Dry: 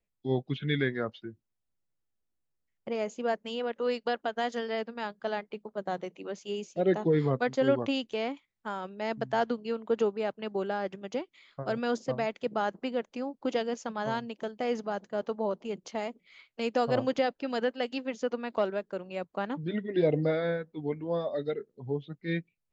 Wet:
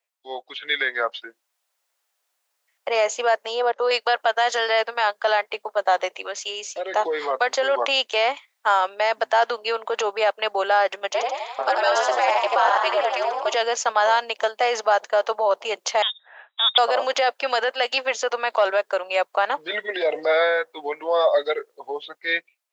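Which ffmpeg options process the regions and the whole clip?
-filter_complex "[0:a]asettb=1/sr,asplit=3[a][b][c];[a]atrim=end=3.464[d];[b]atrim=start=3.46:end=3.91,asetpts=PTS-STARTPTS,afade=t=in:d=0.004:c=qsin,afade=t=out:st=0.446:d=0.004:c=qsin,lowpass=f=6k:w=0.5412,lowpass=f=6k:w=1.3066,equalizer=f=2.5k:w=0.98:g=-14[e];[c]atrim=start=3.906[f];[d][e]acrossfade=d=0.004:c1=hsin:c2=qsin[g];[g][f]acrossfade=d=0.004:c1=qsin:c2=hsin,asettb=1/sr,asplit=3[h][i][j];[h]atrim=end=6.214[k];[i]atrim=start=6.21:end=6.94,asetpts=PTS-STARTPTS,afade=t=in:d=0.004:c=qsin,afade=t=out:st=0.726:d=0.004:c=qsin,equalizer=f=770:t=o:w=1.1:g=-5.5,bandreject=f=60:t=h:w=6,bandreject=f=120:t=h:w=6,bandreject=f=180:t=h:w=6,bandreject=f=240:t=h:w=6,acompressor=threshold=-40dB:ratio=2.5:attack=3.2:release=140:knee=1:detection=peak[l];[j]atrim=start=6.936[m];[k][l]acrossfade=d=0.004:c1=hsin:c2=qsin[n];[n][m]acrossfade=d=0.004:c1=qsin:c2=hsin,asettb=1/sr,asplit=3[o][p][q];[o]atrim=end=11.104[r];[p]atrim=start=11.1:end=13.54,asetpts=PTS-STARTPTS,afade=t=in:d=0.004:c=qsin,afade=t=out:st=2.436:d=0.004:c=qsin,asplit=9[s][t][u][v][w][x][y][z][aa];[t]adelay=84,afreqshift=80,volume=-6.5dB[ab];[u]adelay=168,afreqshift=160,volume=-11.2dB[ac];[v]adelay=252,afreqshift=240,volume=-16dB[ad];[w]adelay=336,afreqshift=320,volume=-20.7dB[ae];[x]adelay=420,afreqshift=400,volume=-25.4dB[af];[y]adelay=504,afreqshift=480,volume=-30.2dB[ag];[z]adelay=588,afreqshift=560,volume=-34.9dB[ah];[aa]adelay=672,afreqshift=640,volume=-39.6dB[ai];[s][ab][ac][ad][ae][af][ag][ah][ai]amix=inputs=9:normalize=0,atrim=end_sample=107604,aeval=exprs='val(0)*sin(2*PI*120*n/s)':c=same[aj];[q]atrim=start=13.536[ak];[r][aj]acrossfade=d=0.004:c1=hsin:c2=qsin[al];[al][ak]acrossfade=d=0.004:c1=qsin:c2=hsin,asettb=1/sr,asplit=3[am][an][ao];[am]atrim=end=16.024[ap];[an]atrim=start=16.02:end=16.78,asetpts=PTS-STARTPTS,afade=t=in:d=0.004:c=qsin,afade=t=out:st=0.756:d=0.004:c=qsin,lowpass=f=3.3k:t=q:w=0.5098,lowpass=f=3.3k:t=q:w=0.6013,lowpass=f=3.3k:t=q:w=0.9,lowpass=f=3.3k:t=q:w=2.563,afreqshift=-3900,equalizer=f=2.1k:t=o:w=2.7:g=-11[aq];[ao]atrim=start=16.776[ar];[ap][aq]acrossfade=d=0.004:c1=hsin:c2=qsin[as];[as][ar]acrossfade=d=0.004:c1=qsin:c2=hsin,dynaudnorm=f=460:g=5:m=12dB,alimiter=limit=-14.5dB:level=0:latency=1:release=22,highpass=f=620:w=0.5412,highpass=f=620:w=1.3066,volume=8.5dB"

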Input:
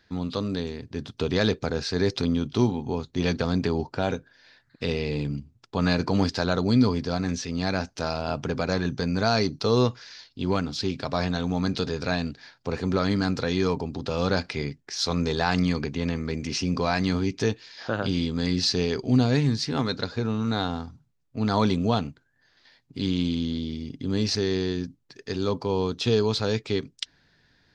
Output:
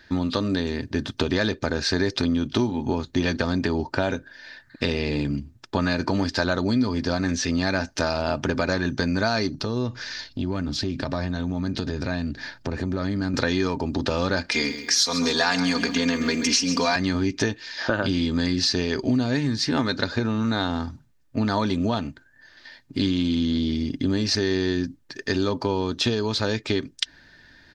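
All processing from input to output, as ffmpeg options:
-filter_complex "[0:a]asettb=1/sr,asplit=3[a][b][c];[a]atrim=end=9.544[d];[b]atrim=start=9.54:end=13.34,asetpts=PTS-STARTPTS,afade=t=in:d=0.004:c=qsin,afade=t=out:st=3.796:d=0.004:c=qsin,lowshelf=f=330:g=10.5,acompressor=threshold=-35dB:ratio=3:attack=3.2:release=140:knee=1:detection=peak[e];[c]atrim=start=13.336[f];[d][e]acrossfade=d=0.004:c1=hsin:c2=qsin[g];[g][f]acrossfade=d=0.004:c1=qsin:c2=hsin,asettb=1/sr,asplit=3[h][i][j];[h]atrim=end=14.514[k];[i]atrim=start=14.51:end=16.96,asetpts=PTS-STARTPTS,afade=t=in:d=0.004:c=qsin,afade=t=out:st=2.446:d=0.004:c=qsin,aemphasis=mode=production:type=bsi,aecho=1:1:4.2:0.85,atrim=end_sample=108045,aecho=1:1:133|266|399|532:0.224|0.0963|0.0414|0.0178,atrim=end_sample=108045[l];[j]atrim=start=16.956[m];[k][l]acrossfade=d=0.004:c1=hsin:c2=qsin[n];[n][m]acrossfade=d=0.004:c1=qsin:c2=hsin,acompressor=threshold=-28dB:ratio=6,equalizer=f=1.7k:t=o:w=0.25:g=7,aecho=1:1:3.3:0.39,volume=8.5dB"

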